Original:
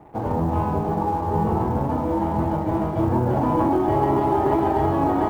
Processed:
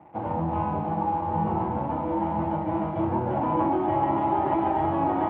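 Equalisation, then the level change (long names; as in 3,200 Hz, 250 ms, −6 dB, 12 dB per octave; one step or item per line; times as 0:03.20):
loudspeaker in its box 130–2,900 Hz, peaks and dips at 130 Hz −7 dB, 250 Hz −9 dB, 430 Hz −9 dB, 670 Hz −3 dB, 1,200 Hz −4 dB, 1,700 Hz −5 dB
notch filter 410 Hz, Q 12
0.0 dB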